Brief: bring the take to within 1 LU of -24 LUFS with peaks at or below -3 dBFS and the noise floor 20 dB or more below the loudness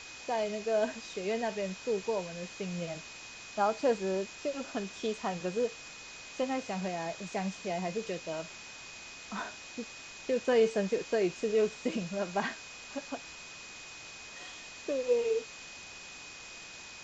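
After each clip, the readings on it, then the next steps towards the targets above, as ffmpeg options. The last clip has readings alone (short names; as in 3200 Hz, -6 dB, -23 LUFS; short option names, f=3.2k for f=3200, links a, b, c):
steady tone 2500 Hz; tone level -49 dBFS; noise floor -48 dBFS; noise floor target -55 dBFS; loudness -34.5 LUFS; peak -16.0 dBFS; loudness target -24.0 LUFS
-> -af "bandreject=f=2.5k:w=30"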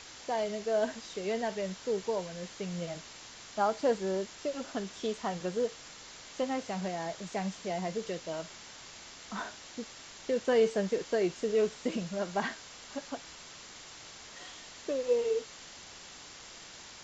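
steady tone none; noise floor -50 dBFS; noise floor target -54 dBFS
-> -af "afftdn=nr=6:nf=-50"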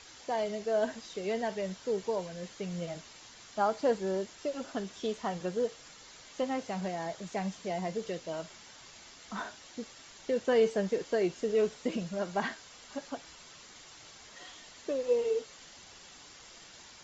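noise floor -53 dBFS; noise floor target -54 dBFS
-> -af "afftdn=nr=6:nf=-53"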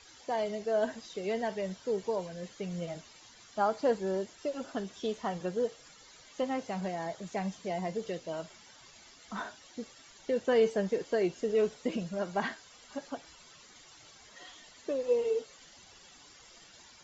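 noise floor -56 dBFS; loudness -34.0 LUFS; peak -16.5 dBFS; loudness target -24.0 LUFS
-> -af "volume=10dB"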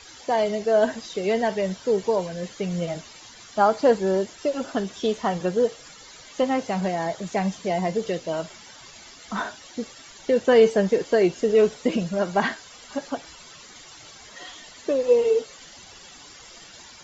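loudness -24.0 LUFS; peak -6.5 dBFS; noise floor -46 dBFS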